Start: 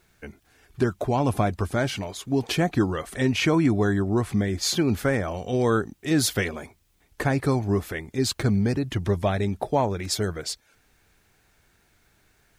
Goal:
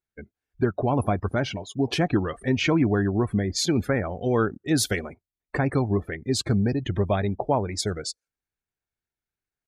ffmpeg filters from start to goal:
ffmpeg -i in.wav -af "atempo=1.3,afftdn=noise_reduction=30:noise_floor=-38" out.wav

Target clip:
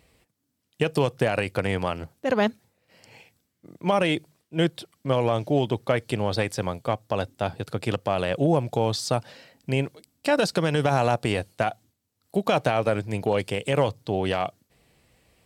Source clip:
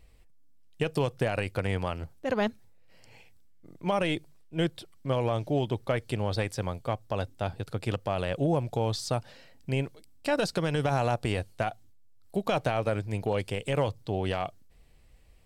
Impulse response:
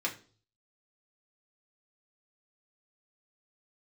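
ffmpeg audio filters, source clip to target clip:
-af "highpass=120,volume=5.5dB"

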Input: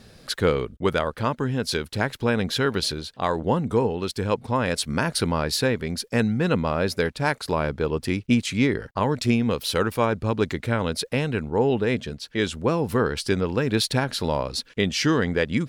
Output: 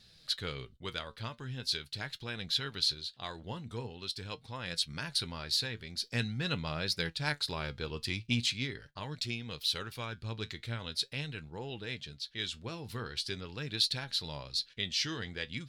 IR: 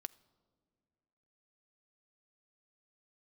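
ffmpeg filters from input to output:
-filter_complex "[0:a]equalizer=frequency=250:width_type=o:width=1:gain=-7,equalizer=frequency=500:width_type=o:width=1:gain=-7,equalizer=frequency=1000:width_type=o:width=1:gain=-5,equalizer=frequency=4000:width_type=o:width=1:gain=12,asplit=3[link_01][link_02][link_03];[link_01]afade=type=out:start_time=6.01:duration=0.02[link_04];[link_02]acontrast=22,afade=type=in:start_time=6.01:duration=0.02,afade=type=out:start_time=8.51:duration=0.02[link_05];[link_03]afade=type=in:start_time=8.51:duration=0.02[link_06];[link_04][link_05][link_06]amix=inputs=3:normalize=0,flanger=delay=5.7:depth=3.5:regen=67:speed=0.43:shape=triangular,volume=-9dB"

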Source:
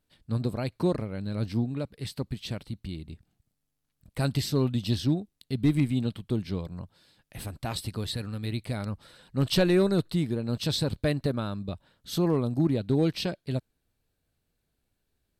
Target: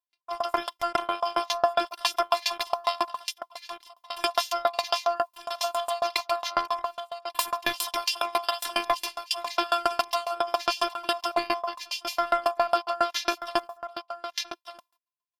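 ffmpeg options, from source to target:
ffmpeg -i in.wav -filter_complex "[0:a]agate=range=-36dB:threshold=-51dB:ratio=16:detection=peak,equalizer=frequency=125:width_type=o:width=1:gain=-11,equalizer=frequency=500:width_type=o:width=1:gain=-6,equalizer=frequency=1000:width_type=o:width=1:gain=-8,equalizer=frequency=8000:width_type=o:width=1:gain=-7,areverse,acompressor=threshold=-37dB:ratio=16,areverse,aeval=exprs='val(0)*sin(2*PI*950*n/s)':channel_layout=same,afftfilt=real='hypot(re,im)*cos(PI*b)':imag='0':win_size=512:overlap=0.75,acrossover=split=2000[link_01][link_02];[link_02]acontrast=83[link_03];[link_01][link_03]amix=inputs=2:normalize=0,aecho=1:1:1197:0.237,alimiter=level_in=35dB:limit=-1dB:release=50:level=0:latency=1,aeval=exprs='val(0)*pow(10,-28*if(lt(mod(7.3*n/s,1),2*abs(7.3)/1000),1-mod(7.3*n/s,1)/(2*abs(7.3)/1000),(mod(7.3*n/s,1)-2*abs(7.3)/1000)/(1-2*abs(7.3)/1000))/20)':channel_layout=same,volume=-6dB" out.wav

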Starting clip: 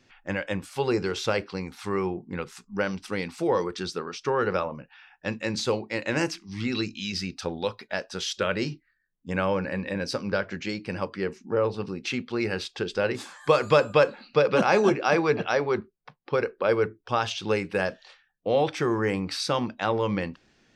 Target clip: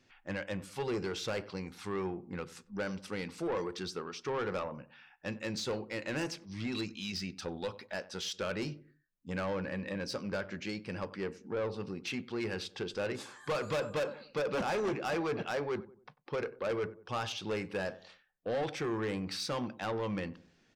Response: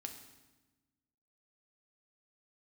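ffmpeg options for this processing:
-filter_complex "[0:a]asplit=2[link_01][link_02];[link_02]adelay=94,lowpass=frequency=950:poles=1,volume=-18dB,asplit=2[link_03][link_04];[link_04]adelay=94,lowpass=frequency=950:poles=1,volume=0.4,asplit=2[link_05][link_06];[link_06]adelay=94,lowpass=frequency=950:poles=1,volume=0.4[link_07];[link_01][link_03][link_05][link_07]amix=inputs=4:normalize=0,asoftclip=type=tanh:threshold=-23dB,volume=-6dB"

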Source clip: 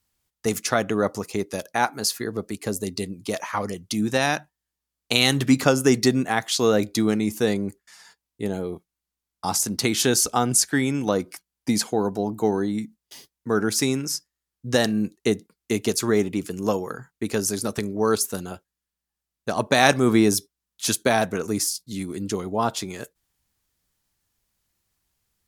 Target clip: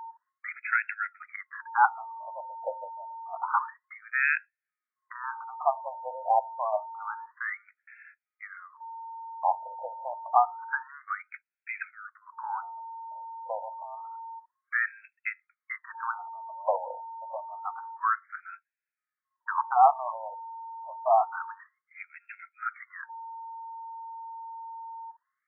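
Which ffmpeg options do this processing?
ffmpeg -i in.wav -af "aeval=exprs='val(0)+0.00891*sin(2*PI*910*n/s)':channel_layout=same,afftfilt=real='re*between(b*sr/1024,700*pow(1900/700,0.5+0.5*sin(2*PI*0.28*pts/sr))/1.41,700*pow(1900/700,0.5+0.5*sin(2*PI*0.28*pts/sr))*1.41)':imag='im*between(b*sr/1024,700*pow(1900/700,0.5+0.5*sin(2*PI*0.28*pts/sr))/1.41,700*pow(1900/700,0.5+0.5*sin(2*PI*0.28*pts/sr))*1.41)':win_size=1024:overlap=0.75,volume=3dB" out.wav

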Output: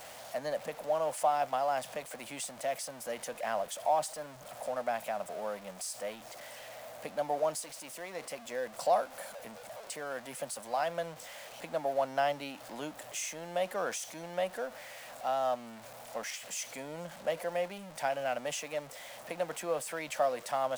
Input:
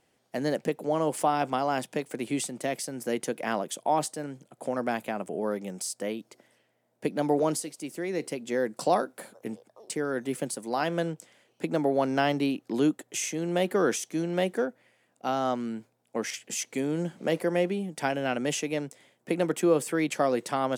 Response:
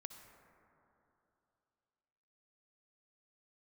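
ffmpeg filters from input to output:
-af "aeval=exprs='val(0)+0.5*0.0188*sgn(val(0))':channel_layout=same,lowshelf=frequency=480:width_type=q:width=3:gain=-8,volume=-8dB"

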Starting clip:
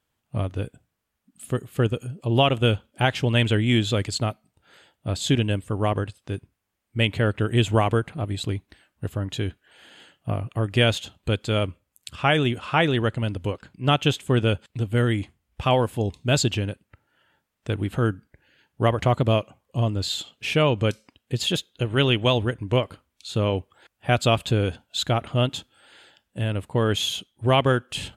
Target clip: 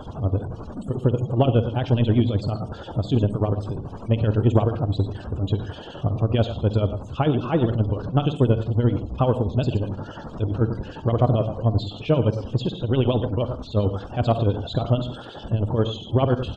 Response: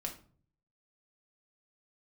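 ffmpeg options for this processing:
-filter_complex "[0:a]aeval=exprs='val(0)+0.5*0.0596*sgn(val(0))':channel_layout=same,aecho=1:1:188:0.251,acrossover=split=2000[link_01][link_02];[link_01]aeval=exprs='val(0)*(1-0.7/2+0.7/2*cos(2*PI*6.7*n/s))':channel_layout=same[link_03];[link_02]aeval=exprs='val(0)*(1-0.7/2-0.7/2*cos(2*PI*6.7*n/s))':channel_layout=same[link_04];[link_03][link_04]amix=inputs=2:normalize=0,asplit=2[link_05][link_06];[1:a]atrim=start_sample=2205,adelay=88[link_07];[link_06][link_07]afir=irnorm=-1:irlink=0,volume=-12.5dB[link_08];[link_05][link_08]amix=inputs=2:normalize=0,acrossover=split=2900[link_09][link_10];[link_10]acompressor=threshold=-40dB:ratio=4:attack=1:release=60[link_11];[link_09][link_11]amix=inputs=2:normalize=0,equalizer=frequency=2000:width=1.1:gain=-14.5,afftdn=noise_reduction=29:noise_floor=-45,atempo=1.7,lowpass=frequency=5900:width=0.5412,lowpass=frequency=5900:width=1.3066,acontrast=34,volume=-1.5dB"

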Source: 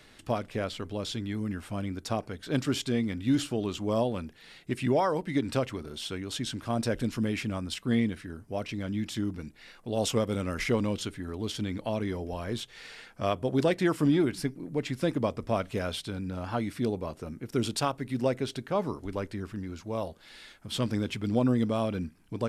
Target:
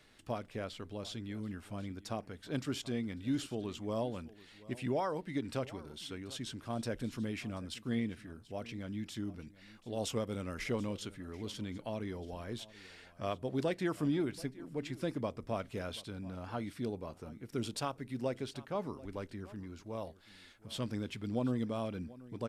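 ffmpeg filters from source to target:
ffmpeg -i in.wav -af "aecho=1:1:734:0.106,volume=-8.5dB" out.wav

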